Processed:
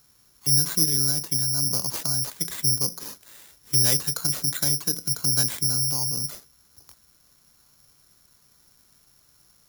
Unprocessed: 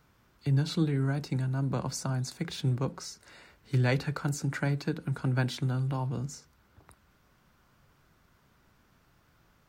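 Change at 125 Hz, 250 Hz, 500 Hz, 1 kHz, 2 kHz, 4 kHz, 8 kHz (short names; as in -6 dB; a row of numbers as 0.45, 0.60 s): -3.5, -3.5, -3.5, -2.5, -2.0, +16.5, +21.0 dB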